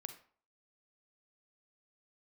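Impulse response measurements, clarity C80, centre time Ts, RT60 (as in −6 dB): 14.5 dB, 10 ms, 0.50 s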